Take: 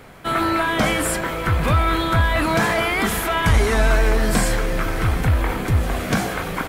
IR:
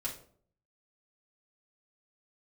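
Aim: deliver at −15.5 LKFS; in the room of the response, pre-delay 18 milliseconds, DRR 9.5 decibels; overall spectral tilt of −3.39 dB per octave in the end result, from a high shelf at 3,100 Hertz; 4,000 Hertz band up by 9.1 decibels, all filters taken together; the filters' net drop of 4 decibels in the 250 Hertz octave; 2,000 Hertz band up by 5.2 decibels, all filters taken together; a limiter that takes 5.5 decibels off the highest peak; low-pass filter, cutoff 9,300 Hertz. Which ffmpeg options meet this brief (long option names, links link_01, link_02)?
-filter_complex "[0:a]lowpass=9300,equalizer=frequency=250:width_type=o:gain=-6,equalizer=frequency=2000:width_type=o:gain=3.5,highshelf=frequency=3100:gain=3.5,equalizer=frequency=4000:width_type=o:gain=8,alimiter=limit=-10dB:level=0:latency=1,asplit=2[link_01][link_02];[1:a]atrim=start_sample=2205,adelay=18[link_03];[link_02][link_03]afir=irnorm=-1:irlink=0,volume=-11dB[link_04];[link_01][link_04]amix=inputs=2:normalize=0,volume=3dB"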